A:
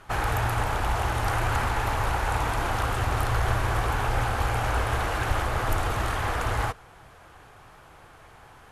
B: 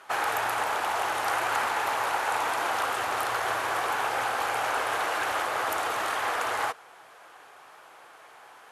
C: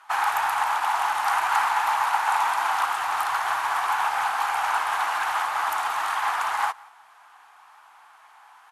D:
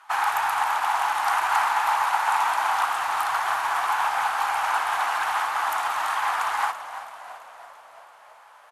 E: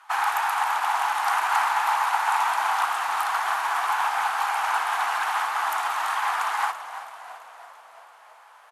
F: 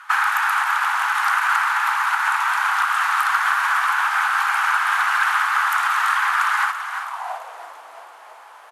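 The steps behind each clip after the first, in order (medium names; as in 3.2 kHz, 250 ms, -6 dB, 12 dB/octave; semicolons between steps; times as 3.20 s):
high-pass 480 Hz 12 dB/octave; trim +1.5 dB
resonant low shelf 670 Hz -9.5 dB, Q 3; delay 175 ms -20.5 dB; upward expansion 1.5:1, over -34 dBFS; trim +2.5 dB
frequency-shifting echo 335 ms, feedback 60%, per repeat -38 Hz, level -13 dB
high-pass 320 Hz 6 dB/octave; band-stop 580 Hz, Q 12
compression, threshold -25 dBFS, peak gain reduction 7.5 dB; high-pass sweep 1.4 kHz -> 310 Hz, 7.00–7.67 s; trim +6.5 dB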